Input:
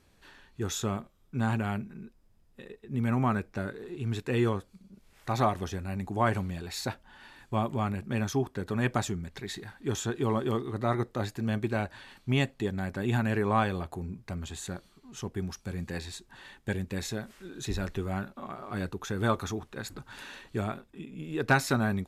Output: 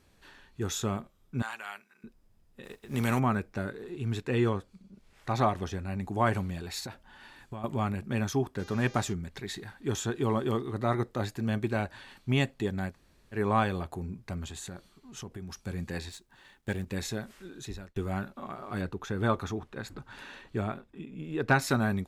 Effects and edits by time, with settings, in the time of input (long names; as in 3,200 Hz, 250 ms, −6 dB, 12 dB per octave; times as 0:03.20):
0:01.42–0:02.04: high-pass filter 1,200 Hz
0:02.63–0:03.18: compressing power law on the bin magnitudes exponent 0.68
0:04.19–0:06.03: high-shelf EQ 11,000 Hz −12 dB
0:06.79–0:07.64: downward compressor 10 to 1, threshold −35 dBFS
0:08.58–0:09.12: hum with harmonics 400 Hz, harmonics 17, −53 dBFS −2 dB per octave
0:12.91–0:13.36: fill with room tone, crossfade 0.10 s
0:14.46–0:15.59: downward compressor, threshold −37 dBFS
0:16.09–0:16.86: mu-law and A-law mismatch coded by A
0:17.39–0:17.96: fade out
0:18.81–0:21.62: high-shelf EQ 4,800 Hz −9.5 dB